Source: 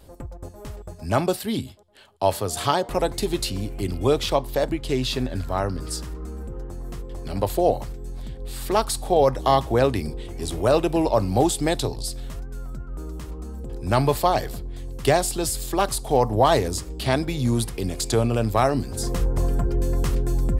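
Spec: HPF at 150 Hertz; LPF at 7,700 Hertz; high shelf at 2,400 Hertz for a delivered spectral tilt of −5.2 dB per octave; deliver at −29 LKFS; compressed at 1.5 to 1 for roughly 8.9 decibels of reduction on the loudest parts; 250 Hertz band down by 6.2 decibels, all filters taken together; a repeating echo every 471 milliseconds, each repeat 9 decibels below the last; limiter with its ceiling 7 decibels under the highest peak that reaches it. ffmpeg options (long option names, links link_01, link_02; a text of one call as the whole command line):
ffmpeg -i in.wav -af "highpass=150,lowpass=7700,equalizer=frequency=250:width_type=o:gain=-8,highshelf=frequency=2400:gain=-8,acompressor=threshold=-41dB:ratio=1.5,alimiter=limit=-23.5dB:level=0:latency=1,aecho=1:1:471|942|1413|1884:0.355|0.124|0.0435|0.0152,volume=8dB" out.wav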